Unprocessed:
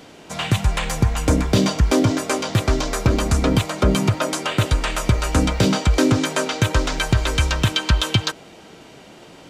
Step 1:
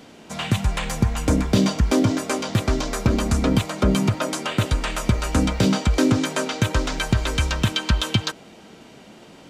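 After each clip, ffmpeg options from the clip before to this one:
ffmpeg -i in.wav -af "equalizer=frequency=220:width_type=o:width=0.38:gain=7,volume=-3dB" out.wav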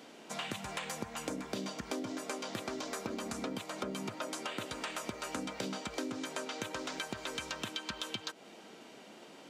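ffmpeg -i in.wav -af "highpass=270,acompressor=threshold=-30dB:ratio=6,volume=-6dB" out.wav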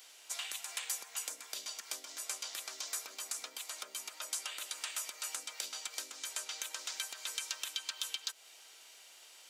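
ffmpeg -i in.wav -af "highpass=450,aderivative,volume=7.5dB" out.wav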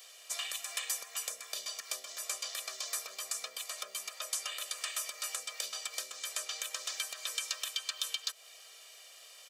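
ffmpeg -i in.wav -af "aecho=1:1:1.7:0.94" out.wav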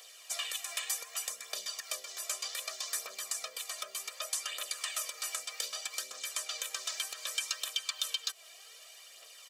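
ffmpeg -i in.wav -af "aphaser=in_gain=1:out_gain=1:delay=3.2:decay=0.42:speed=0.65:type=triangular" out.wav

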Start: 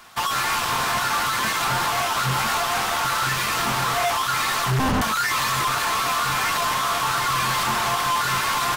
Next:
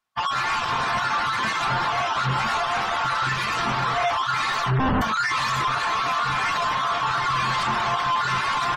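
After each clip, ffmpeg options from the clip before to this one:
ffmpeg -i in.wav -af "afftdn=noise_reduction=35:noise_floor=-30" out.wav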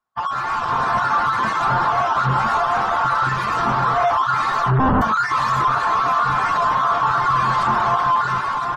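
ffmpeg -i in.wav -af "highshelf=frequency=1700:width_type=q:width=1.5:gain=-8,dynaudnorm=framelen=120:gausssize=11:maxgain=4.5dB" out.wav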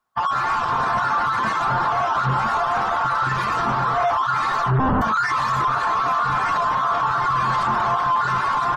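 ffmpeg -i in.wav -af "alimiter=limit=-19.5dB:level=0:latency=1:release=106,volume=5.5dB" out.wav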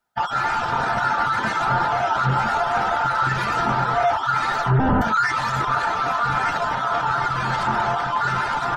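ffmpeg -i in.wav -af "asuperstop=centerf=1100:order=20:qfactor=7.4,volume=1.5dB" out.wav

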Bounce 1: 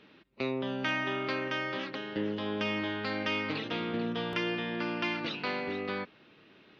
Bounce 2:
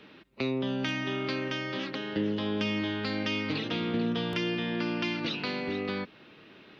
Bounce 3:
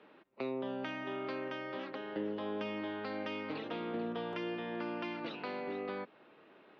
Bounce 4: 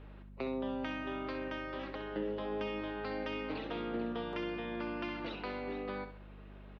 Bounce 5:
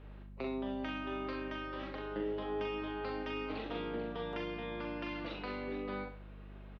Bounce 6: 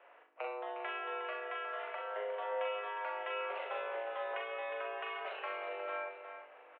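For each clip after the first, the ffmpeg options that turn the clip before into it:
ffmpeg -i in.wav -filter_complex "[0:a]acrossover=split=360|3000[link_01][link_02][link_03];[link_02]acompressor=threshold=-42dB:ratio=6[link_04];[link_01][link_04][link_03]amix=inputs=3:normalize=0,volume=5.5dB" out.wav
ffmpeg -i in.wav -af "bandpass=frequency=730:width_type=q:width=0.98:csg=0,volume=-1.5dB" out.wav
ffmpeg -i in.wav -af "aeval=exprs='val(0)+0.00316*(sin(2*PI*50*n/s)+sin(2*PI*2*50*n/s)/2+sin(2*PI*3*50*n/s)/3+sin(2*PI*4*50*n/s)/4+sin(2*PI*5*50*n/s)/5)':channel_layout=same,aecho=1:1:65|130|195|260:0.335|0.114|0.0387|0.0132" out.wav
ffmpeg -i in.wav -filter_complex "[0:a]asplit=2[link_01][link_02];[link_02]adelay=41,volume=-4.5dB[link_03];[link_01][link_03]amix=inputs=2:normalize=0,volume=-2dB" out.wav
ffmpeg -i in.wav -af "aecho=1:1:359|846:0.355|0.106,highpass=frequency=450:width_type=q:width=0.5412,highpass=frequency=450:width_type=q:width=1.307,lowpass=frequency=2700:width_type=q:width=0.5176,lowpass=frequency=2700:width_type=q:width=0.7071,lowpass=frequency=2700:width_type=q:width=1.932,afreqshift=100,volume=3dB" out.wav

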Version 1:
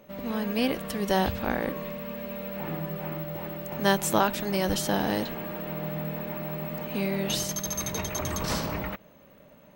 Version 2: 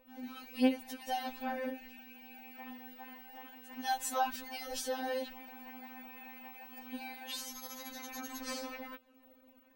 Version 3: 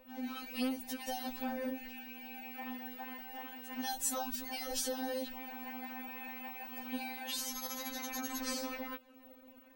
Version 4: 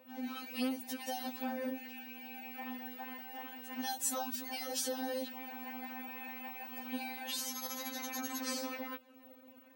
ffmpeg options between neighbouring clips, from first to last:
ffmpeg -i in.wav -af "afftfilt=real='re*3.46*eq(mod(b,12),0)':imag='im*3.46*eq(mod(b,12),0)':win_size=2048:overlap=0.75,volume=-7dB" out.wav
ffmpeg -i in.wav -filter_complex "[0:a]acrossover=split=360|4700[link_01][link_02][link_03];[link_01]asoftclip=type=tanh:threshold=-39dB[link_04];[link_02]acompressor=threshold=-46dB:ratio=6[link_05];[link_04][link_05][link_03]amix=inputs=3:normalize=0,volume=5dB" out.wav
ffmpeg -i in.wav -af "highpass=110" out.wav

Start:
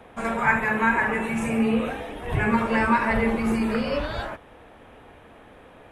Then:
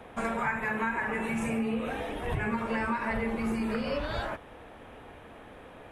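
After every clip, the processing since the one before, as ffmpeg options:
ffmpeg -i in.wav -af "acompressor=threshold=-28dB:ratio=5" out.wav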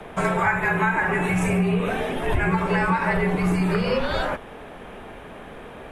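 ffmpeg -i in.wav -af "afreqshift=-43,volume=9dB" out.wav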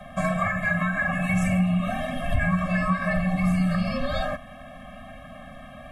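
ffmpeg -i in.wav -af "afftfilt=real='re*eq(mod(floor(b*sr/1024/260),2),0)':imag='im*eq(mod(floor(b*sr/1024/260),2),0)':win_size=1024:overlap=0.75" out.wav

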